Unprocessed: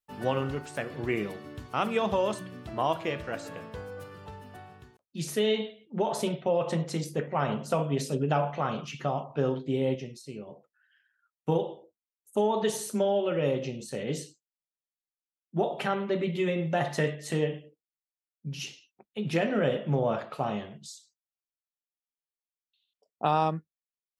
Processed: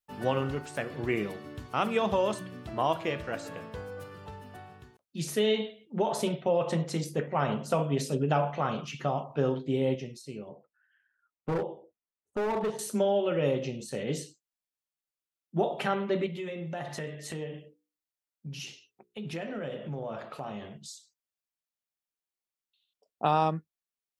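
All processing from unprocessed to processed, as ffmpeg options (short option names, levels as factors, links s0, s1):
-filter_complex "[0:a]asettb=1/sr,asplit=3[s0][s1][s2];[s0]atrim=end=10.494[s3];[s1]atrim=start=10.49:end=12.79,asetpts=PTS-STARTPTS,afade=t=in:d=0.004:c=qsin,afade=t=out:st=2.296:d=0.004:c=qsin,lowpass=1800,asoftclip=type=hard:threshold=0.0501[s4];[s2]atrim=start=12.786[s5];[s3][s4]acrossfade=d=0.004:c1=hsin:c2=qsin[s6];[s6][s5]acrossfade=d=0.004:c1=qsin:c2=hsin,asettb=1/sr,asplit=3[s7][s8][s9];[s7]atrim=end=16.264[s10];[s8]atrim=start=16.26:end=20.77,asetpts=PTS-STARTPTS,afade=t=in:d=0.004:c=qsin,afade=t=out:st=4.506:d=0.004:c=qsin,bandreject=f=60:t=h:w=6,bandreject=f=120:t=h:w=6,bandreject=f=180:t=h:w=6,bandreject=f=240:t=h:w=6,bandreject=f=300:t=h:w=6,bandreject=f=360:t=h:w=6,bandreject=f=420:t=h:w=6,bandreject=f=480:t=h:w=6,acompressor=threshold=0.0141:ratio=2.5:attack=3.2:release=140:knee=1:detection=peak[s11];[s9]atrim=start=20.766[s12];[s10][s11]acrossfade=d=0.004:c1=hsin:c2=qsin[s13];[s13][s12]acrossfade=d=0.004:c1=qsin:c2=hsin"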